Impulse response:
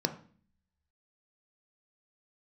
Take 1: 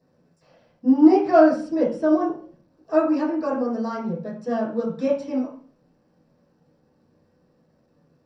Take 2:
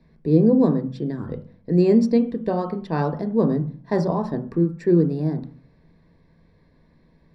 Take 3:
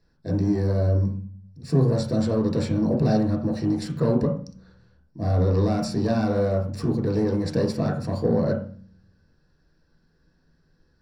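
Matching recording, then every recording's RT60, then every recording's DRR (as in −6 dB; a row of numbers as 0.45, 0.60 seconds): 2; 0.45, 0.45, 0.45 seconds; −9.0, 6.5, −1.0 decibels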